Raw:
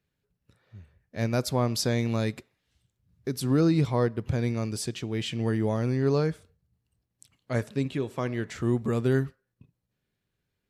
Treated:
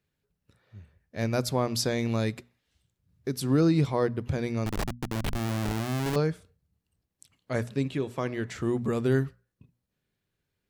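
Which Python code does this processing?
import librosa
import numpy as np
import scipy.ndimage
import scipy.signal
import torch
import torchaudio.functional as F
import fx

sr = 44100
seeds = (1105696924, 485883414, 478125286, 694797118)

y = fx.schmitt(x, sr, flips_db=-26.5, at=(4.66, 6.16))
y = fx.hum_notches(y, sr, base_hz=60, count=4)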